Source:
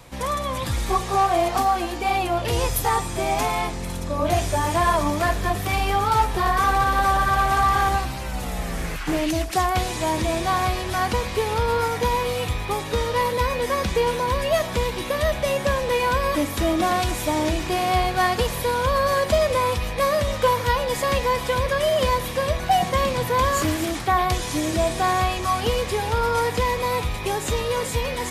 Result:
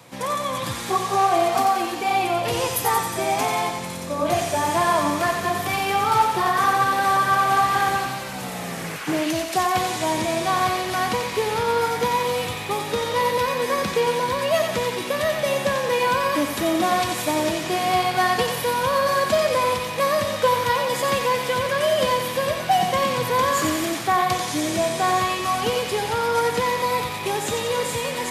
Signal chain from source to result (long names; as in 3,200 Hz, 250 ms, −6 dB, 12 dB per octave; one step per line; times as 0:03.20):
high-pass filter 120 Hz 24 dB per octave
on a send: feedback echo with a high-pass in the loop 90 ms, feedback 66%, high-pass 720 Hz, level −5 dB